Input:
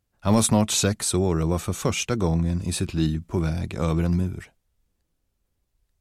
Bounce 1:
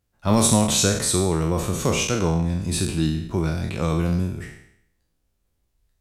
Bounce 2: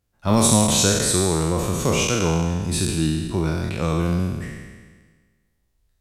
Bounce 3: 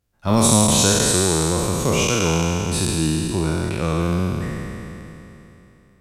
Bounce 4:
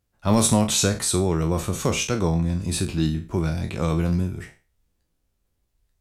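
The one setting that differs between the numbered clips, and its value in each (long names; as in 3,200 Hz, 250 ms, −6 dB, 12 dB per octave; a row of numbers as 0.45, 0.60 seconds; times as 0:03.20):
peak hold with a decay on every bin, RT60: 0.71, 1.49, 3.14, 0.33 seconds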